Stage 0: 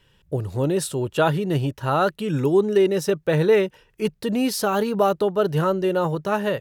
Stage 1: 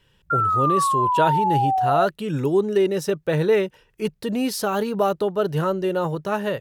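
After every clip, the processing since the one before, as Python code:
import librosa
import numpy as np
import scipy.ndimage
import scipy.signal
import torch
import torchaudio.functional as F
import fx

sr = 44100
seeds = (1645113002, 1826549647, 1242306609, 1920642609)

y = fx.spec_paint(x, sr, seeds[0], shape='fall', start_s=0.3, length_s=1.76, low_hz=670.0, high_hz=1400.0, level_db=-19.0)
y = y * 10.0 ** (-1.5 / 20.0)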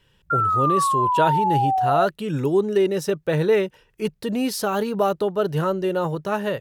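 y = x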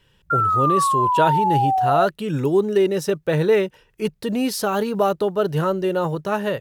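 y = fx.quant_float(x, sr, bits=6)
y = y * 10.0 ** (1.5 / 20.0)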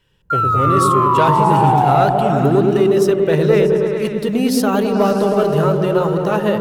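y = fx.leveller(x, sr, passes=1)
y = fx.echo_opening(y, sr, ms=106, hz=400, octaves=1, feedback_pct=70, wet_db=0)
y = y * 10.0 ** (-1.0 / 20.0)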